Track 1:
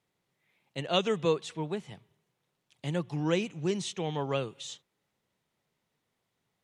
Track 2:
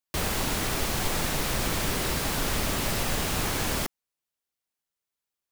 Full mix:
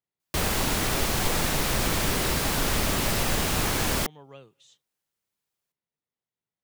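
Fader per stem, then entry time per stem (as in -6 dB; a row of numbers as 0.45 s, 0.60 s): -16.0 dB, +2.5 dB; 0.00 s, 0.20 s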